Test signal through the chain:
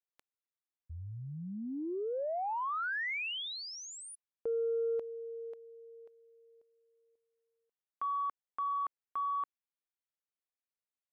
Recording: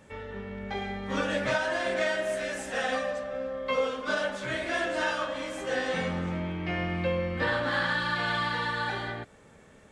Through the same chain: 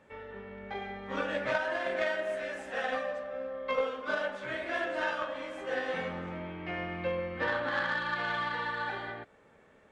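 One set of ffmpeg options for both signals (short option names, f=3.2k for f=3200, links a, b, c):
-af "bass=f=250:g=-8,treble=f=4k:g=-13,aeval=exprs='0.158*(cos(1*acos(clip(val(0)/0.158,-1,1)))-cos(1*PI/2))+0.0178*(cos(3*acos(clip(val(0)/0.158,-1,1)))-cos(3*PI/2))':c=same"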